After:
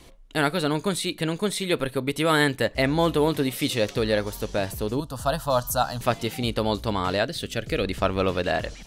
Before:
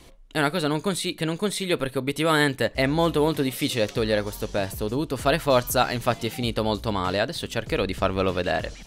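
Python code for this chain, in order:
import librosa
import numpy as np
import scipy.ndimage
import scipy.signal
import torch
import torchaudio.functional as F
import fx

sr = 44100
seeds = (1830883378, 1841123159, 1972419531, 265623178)

y = fx.fixed_phaser(x, sr, hz=910.0, stages=4, at=(5.0, 6.01))
y = fx.peak_eq(y, sr, hz=950.0, db=-14.0, octaves=0.5, at=(7.26, 7.85))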